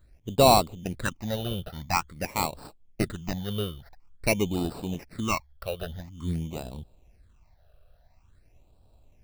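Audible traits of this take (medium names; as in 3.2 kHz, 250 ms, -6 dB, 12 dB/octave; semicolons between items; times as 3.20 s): aliases and images of a low sample rate 3.3 kHz, jitter 0%; phasing stages 8, 0.48 Hz, lowest notch 270–2000 Hz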